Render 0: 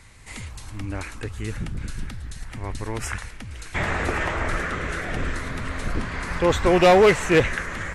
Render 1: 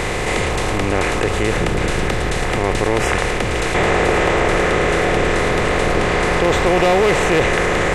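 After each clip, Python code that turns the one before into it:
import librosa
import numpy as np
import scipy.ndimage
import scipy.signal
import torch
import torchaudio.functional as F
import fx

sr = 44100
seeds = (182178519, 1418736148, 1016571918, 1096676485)

y = fx.bin_compress(x, sr, power=0.4)
y = fx.env_flatten(y, sr, amount_pct=50)
y = F.gain(torch.from_numpy(y), -3.0).numpy()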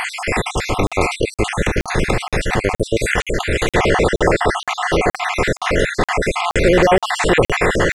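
y = fx.spec_dropout(x, sr, seeds[0], share_pct=54)
y = fx.buffer_crackle(y, sr, first_s=0.87, period_s=0.47, block=2048, kind='zero')
y = F.gain(torch.from_numpy(y), 3.5).numpy()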